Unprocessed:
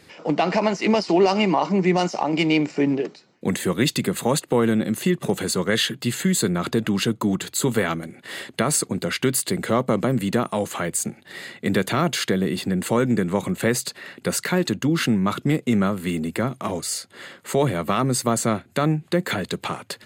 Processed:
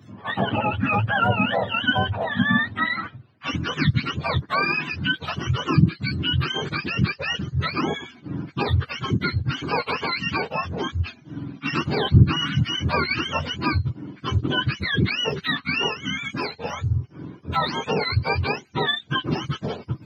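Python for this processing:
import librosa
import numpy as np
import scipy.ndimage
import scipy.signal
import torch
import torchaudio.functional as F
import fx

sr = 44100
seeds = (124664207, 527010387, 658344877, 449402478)

y = fx.octave_mirror(x, sr, pivot_hz=740.0)
y = fx.low_shelf(y, sr, hz=160.0, db=10.5, at=(12.14, 13.58))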